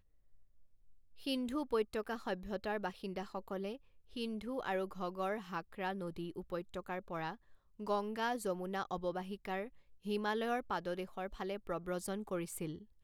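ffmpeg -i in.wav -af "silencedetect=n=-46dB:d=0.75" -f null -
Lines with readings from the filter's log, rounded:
silence_start: 0.00
silence_end: 1.19 | silence_duration: 1.19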